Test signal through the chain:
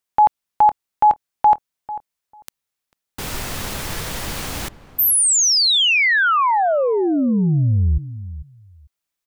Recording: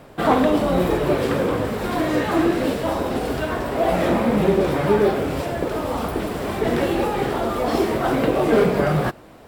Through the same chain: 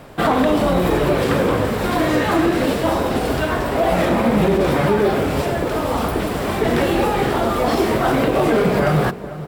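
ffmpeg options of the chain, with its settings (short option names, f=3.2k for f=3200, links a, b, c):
-filter_complex "[0:a]equalizer=f=390:t=o:w=1.9:g=-2.5,asplit=2[a][b];[b]adelay=445,lowpass=f=1.1k:p=1,volume=-14.5dB,asplit=2[c][d];[d]adelay=445,lowpass=f=1.1k:p=1,volume=0.17[e];[a][c][e]amix=inputs=3:normalize=0,alimiter=level_in=12dB:limit=-1dB:release=50:level=0:latency=1,volume=-6.5dB"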